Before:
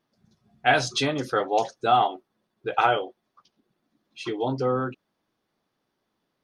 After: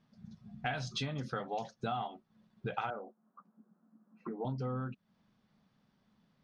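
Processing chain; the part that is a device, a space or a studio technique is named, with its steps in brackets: jukebox (LPF 6000 Hz 12 dB/oct; resonant low shelf 260 Hz +7 dB, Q 3; compressor 5:1, threshold -37 dBFS, peak gain reduction 19.5 dB); 2.9–4.45 elliptic band-pass 200–1400 Hz, stop band 40 dB; gain +1 dB

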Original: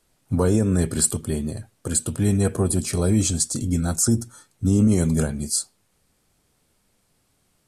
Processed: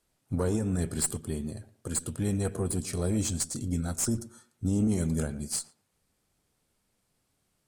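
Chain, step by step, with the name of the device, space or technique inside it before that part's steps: rockabilly slapback (tube stage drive 10 dB, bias 0.6; tape echo 0.115 s, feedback 24%, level -15 dB, low-pass 1600 Hz); gain -5.5 dB

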